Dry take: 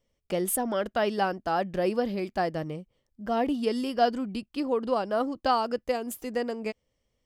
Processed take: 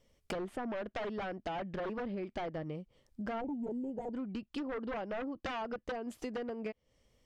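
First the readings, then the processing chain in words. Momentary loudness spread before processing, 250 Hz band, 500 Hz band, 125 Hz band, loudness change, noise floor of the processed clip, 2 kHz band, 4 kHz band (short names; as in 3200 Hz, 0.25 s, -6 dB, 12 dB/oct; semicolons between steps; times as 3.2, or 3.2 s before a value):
8 LU, -8.5 dB, -11.5 dB, -7.5 dB, -11.0 dB, -78 dBFS, -8.5 dB, -12.0 dB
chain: wavefolder -24.5 dBFS; treble ducked by the level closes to 2200 Hz, closed at -27.5 dBFS; compressor 5:1, threshold -44 dBFS, peak gain reduction 14.5 dB; spectral gain 3.41–4.14, 960–6400 Hz -24 dB; gain +6 dB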